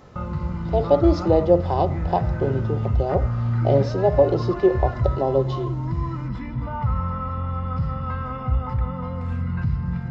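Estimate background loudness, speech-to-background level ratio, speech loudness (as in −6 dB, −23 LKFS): −26.5 LKFS, 4.0 dB, −22.5 LKFS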